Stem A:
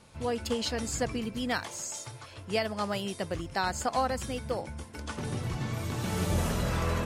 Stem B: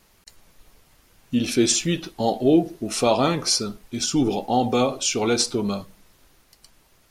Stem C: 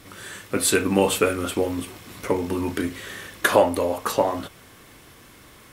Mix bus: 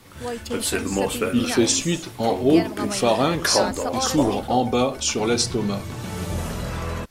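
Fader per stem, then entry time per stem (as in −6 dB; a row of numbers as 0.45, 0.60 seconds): +1.0, 0.0, −4.5 decibels; 0.00, 0.00, 0.00 seconds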